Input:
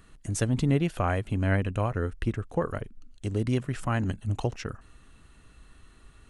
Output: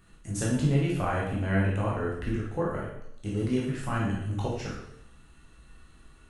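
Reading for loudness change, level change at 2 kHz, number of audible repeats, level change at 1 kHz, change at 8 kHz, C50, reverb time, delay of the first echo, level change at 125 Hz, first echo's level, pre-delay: -0.5 dB, 0.0 dB, none, 0.0 dB, -0.5 dB, 1.5 dB, 0.75 s, none, -1.0 dB, none, 5 ms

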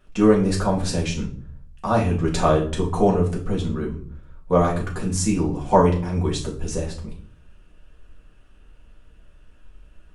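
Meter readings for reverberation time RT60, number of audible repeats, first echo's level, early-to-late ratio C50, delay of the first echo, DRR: 0.50 s, none, none, 9.5 dB, none, -3.0 dB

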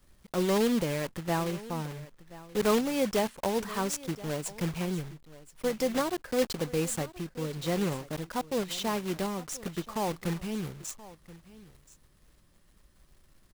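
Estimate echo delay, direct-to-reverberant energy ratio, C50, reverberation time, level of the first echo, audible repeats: 1.027 s, none, none, none, -18.5 dB, 1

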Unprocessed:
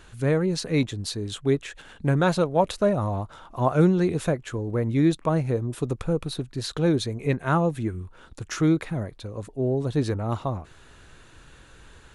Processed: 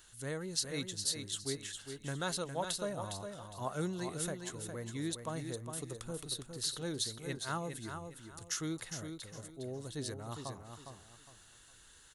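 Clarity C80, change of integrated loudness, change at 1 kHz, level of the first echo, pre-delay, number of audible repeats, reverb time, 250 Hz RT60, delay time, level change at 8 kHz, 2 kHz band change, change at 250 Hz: none, -14.0 dB, -14.0 dB, -7.0 dB, none, 3, none, none, 0.409 s, +1.5 dB, -11.0 dB, -17.5 dB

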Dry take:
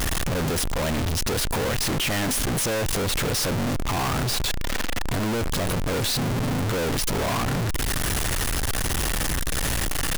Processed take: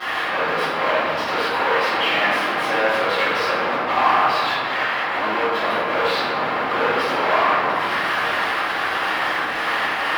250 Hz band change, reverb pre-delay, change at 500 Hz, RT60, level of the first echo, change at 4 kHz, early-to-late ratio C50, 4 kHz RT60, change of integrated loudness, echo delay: -3.5 dB, 3 ms, +6.5 dB, 2.1 s, none, +2.5 dB, -3.5 dB, 0.95 s, +5.0 dB, none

